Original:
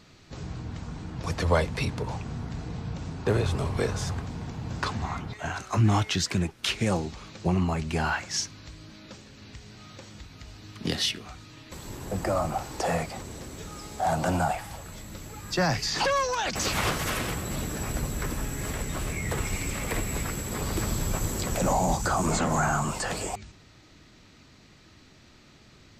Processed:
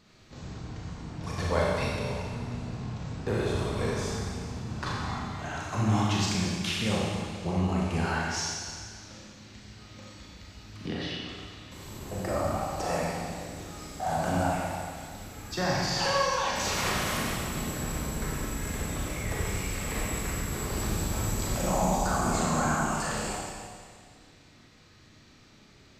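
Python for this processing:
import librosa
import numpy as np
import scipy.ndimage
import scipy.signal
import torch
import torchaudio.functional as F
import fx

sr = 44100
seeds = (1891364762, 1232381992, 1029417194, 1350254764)

y = fx.env_lowpass_down(x, sr, base_hz=2400.0, full_db=-26.5, at=(10.71, 11.29))
y = fx.rev_schroeder(y, sr, rt60_s=1.9, comb_ms=29, drr_db=-4.5)
y = F.gain(torch.from_numpy(y), -7.0).numpy()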